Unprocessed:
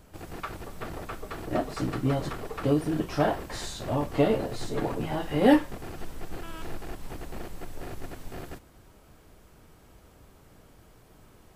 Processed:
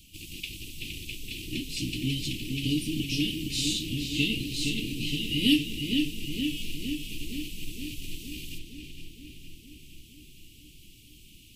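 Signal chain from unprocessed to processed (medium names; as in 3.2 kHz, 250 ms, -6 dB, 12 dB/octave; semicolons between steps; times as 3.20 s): elliptic band-stop 310–2800 Hz, stop band 60 dB; resonant high shelf 1.9 kHz +10.5 dB, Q 3; filtered feedback delay 465 ms, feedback 68%, low-pass 3.7 kHz, level -4 dB; trim -2.5 dB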